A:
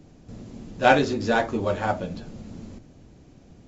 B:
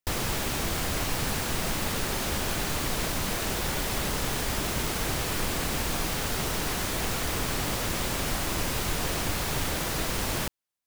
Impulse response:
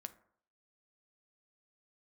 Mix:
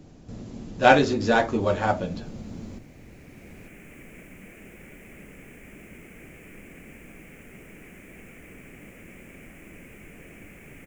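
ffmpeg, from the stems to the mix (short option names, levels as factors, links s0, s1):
-filter_complex "[0:a]volume=1.19,asplit=2[s0][s1];[1:a]firequalizer=gain_entry='entry(110,0);entry(190,9);entry(540,3);entry(930,-9);entry(2300,11);entry(4000,-26);entry(7000,-5)':delay=0.05:min_phase=1,acrusher=bits=7:mix=0:aa=0.5,adelay=1150,volume=0.106[s2];[s1]apad=whole_len=534317[s3];[s2][s3]sidechaincompress=threshold=0.0112:ratio=8:attack=9.7:release=1180[s4];[s0][s4]amix=inputs=2:normalize=0"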